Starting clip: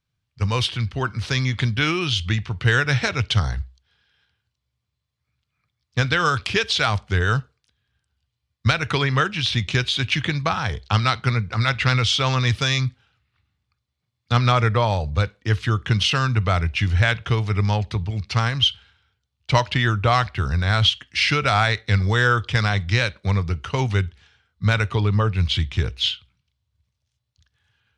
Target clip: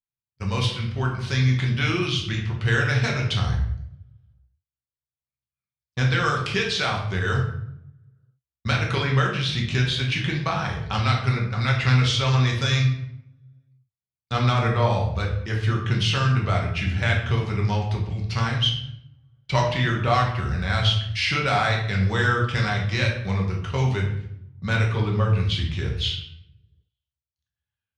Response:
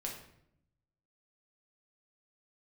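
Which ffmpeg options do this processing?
-filter_complex "[0:a]agate=range=-21dB:threshold=-43dB:ratio=16:detection=peak[a];[1:a]atrim=start_sample=2205[b];[a][b]afir=irnorm=-1:irlink=0,volume=-2.5dB"

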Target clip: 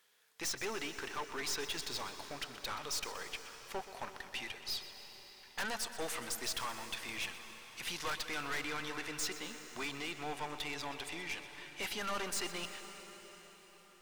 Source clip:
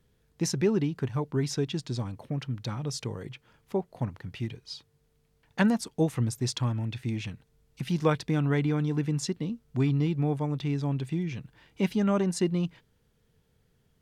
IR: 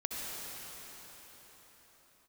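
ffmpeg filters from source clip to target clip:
-filter_complex "[0:a]highpass=1.1k,aeval=exprs='(tanh(158*val(0)+0.45)-tanh(0.45))/158':c=same,asplit=2[a][b];[1:a]atrim=start_sample=2205,adelay=125[c];[b][c]afir=irnorm=-1:irlink=0,volume=-12dB[d];[a][d]amix=inputs=2:normalize=0,volume=9dB"

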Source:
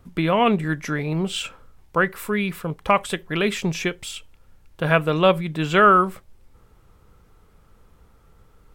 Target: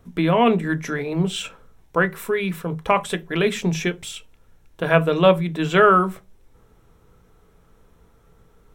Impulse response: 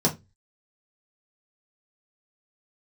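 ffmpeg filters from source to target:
-filter_complex "[0:a]asplit=2[a][b];[1:a]atrim=start_sample=2205,lowshelf=f=190:g=-7[c];[b][c]afir=irnorm=-1:irlink=0,volume=-19.5dB[d];[a][d]amix=inputs=2:normalize=0,volume=-1.5dB"

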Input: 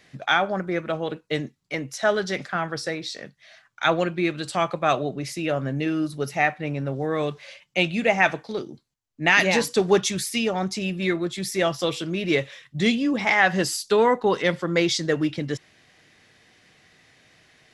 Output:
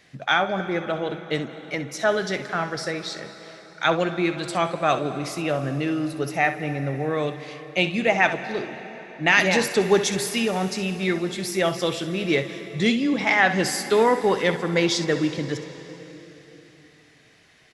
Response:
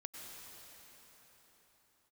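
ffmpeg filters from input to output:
-filter_complex "[0:a]asplit=2[a][b];[b]adelay=270,highpass=300,lowpass=3.4k,asoftclip=type=hard:threshold=-12dB,volume=-27dB[c];[a][c]amix=inputs=2:normalize=0,asplit=2[d][e];[1:a]atrim=start_sample=2205,asetrate=48510,aresample=44100,adelay=65[f];[e][f]afir=irnorm=-1:irlink=0,volume=-5.5dB[g];[d][g]amix=inputs=2:normalize=0"

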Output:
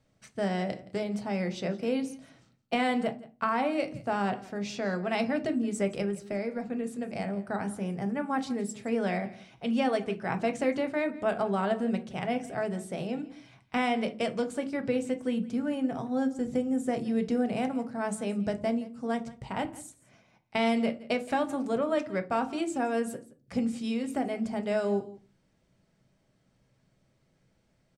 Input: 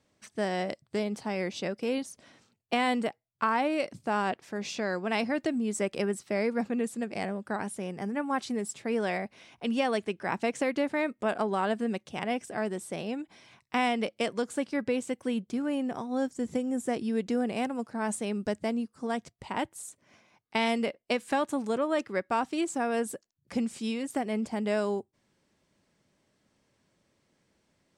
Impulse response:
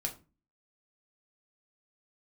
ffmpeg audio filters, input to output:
-filter_complex "[0:a]asettb=1/sr,asplit=3[a][b][c];[a]atrim=end=6.004[d];[b]atrim=start=6:end=7.49,asetpts=PTS-STARTPTS,afade=t=in:d=0.004:c=qsin,afade=t=out:st=1.486:d=0.004:c=qsin,acompressor=threshold=-29dB:ratio=6[e];[c]atrim=start=7.486[f];[d][e]acrossfade=d=0.004:c1=hsin:c2=qsin[g];[g][f]acrossfade=d=0.004:c1=qsin:c2=hsin,aecho=1:1:170:0.106,asplit=2[h][i];[1:a]atrim=start_sample=2205,lowshelf=f=240:g=11.5,highshelf=f=6.9k:g=-9[j];[i][j]afir=irnorm=-1:irlink=0,volume=0.5dB[k];[h][k]amix=inputs=2:normalize=0,volume=-7.5dB"

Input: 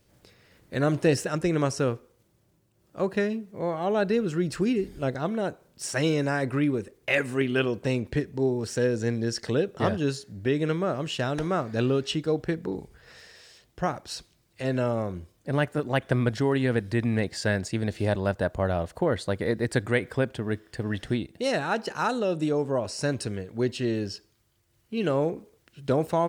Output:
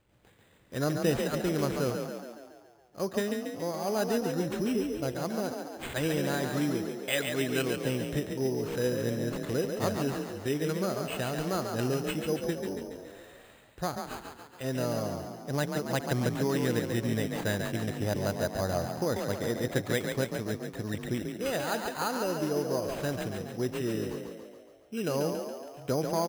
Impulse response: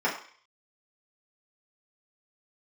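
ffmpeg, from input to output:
-filter_complex "[0:a]acrusher=samples=8:mix=1:aa=0.000001,asplit=9[a][b][c][d][e][f][g][h][i];[b]adelay=140,afreqshift=36,volume=-5.5dB[j];[c]adelay=280,afreqshift=72,volume=-10.2dB[k];[d]adelay=420,afreqshift=108,volume=-15dB[l];[e]adelay=560,afreqshift=144,volume=-19.7dB[m];[f]adelay=700,afreqshift=180,volume=-24.4dB[n];[g]adelay=840,afreqshift=216,volume=-29.2dB[o];[h]adelay=980,afreqshift=252,volume=-33.9dB[p];[i]adelay=1120,afreqshift=288,volume=-38.6dB[q];[a][j][k][l][m][n][o][p][q]amix=inputs=9:normalize=0,volume=-5.5dB"

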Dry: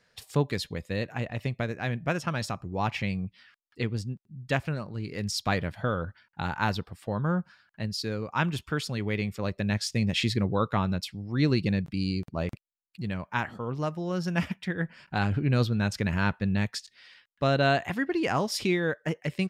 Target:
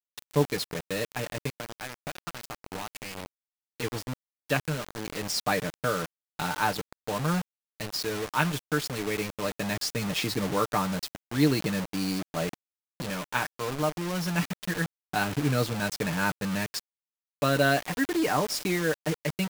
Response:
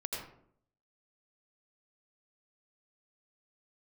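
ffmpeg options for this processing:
-filter_complex "[0:a]aeval=exprs='if(lt(val(0),0),0.708*val(0),val(0))':c=same,highpass=180,bandreject=f=2k:w=22,aecho=1:1:6.7:0.57,adynamicequalizer=threshold=0.00355:dfrequency=3100:dqfactor=1.6:tfrequency=3100:tqfactor=1.6:attack=5:release=100:ratio=0.375:range=3.5:mode=cutabove:tftype=bell,asplit=3[a][b][c];[a]afade=t=out:st=1.48:d=0.02[d];[b]acompressor=threshold=-37dB:ratio=8,afade=t=in:st=1.48:d=0.02,afade=t=out:st=3.82:d=0.02[e];[c]afade=t=in:st=3.82:d=0.02[f];[d][e][f]amix=inputs=3:normalize=0,acrusher=bits=5:mix=0:aa=0.000001,volume=2dB"

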